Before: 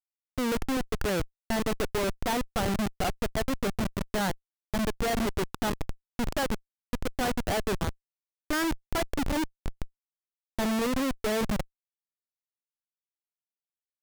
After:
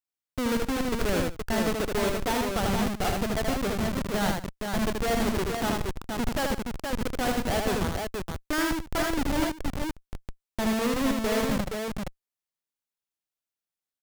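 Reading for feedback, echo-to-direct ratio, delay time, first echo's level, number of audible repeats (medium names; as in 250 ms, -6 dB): no regular repeats, -1.0 dB, 78 ms, -3.5 dB, 3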